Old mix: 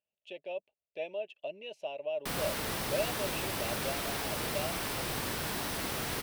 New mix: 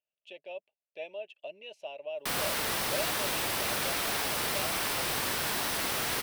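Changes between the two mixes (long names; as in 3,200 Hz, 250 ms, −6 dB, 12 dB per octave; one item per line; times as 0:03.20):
background +5.5 dB
master: add low-shelf EQ 410 Hz −9.5 dB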